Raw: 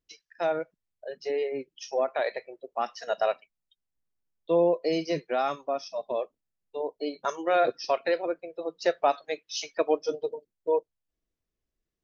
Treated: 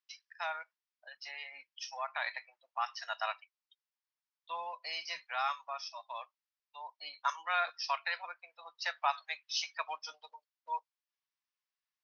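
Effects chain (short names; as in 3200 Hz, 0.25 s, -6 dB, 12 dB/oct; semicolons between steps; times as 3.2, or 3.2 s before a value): elliptic band-pass 940–5500 Hz, stop band 40 dB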